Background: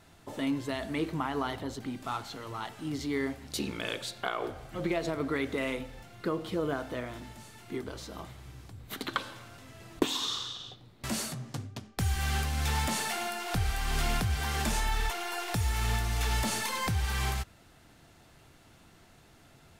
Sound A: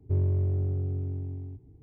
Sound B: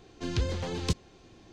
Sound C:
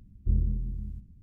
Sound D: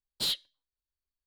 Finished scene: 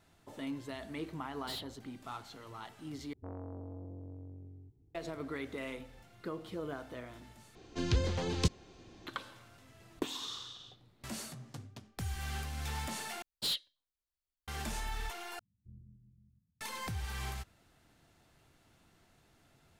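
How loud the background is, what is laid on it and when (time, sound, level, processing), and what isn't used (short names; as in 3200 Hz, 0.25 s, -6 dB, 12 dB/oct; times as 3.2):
background -9 dB
1.27 add D -14.5 dB + sample leveller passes 1
3.13 replace with A -13 dB + core saturation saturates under 580 Hz
7.55 replace with B -1 dB
13.22 replace with D -4 dB
15.39 replace with C -12.5 dB + ladder band-pass 160 Hz, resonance 25%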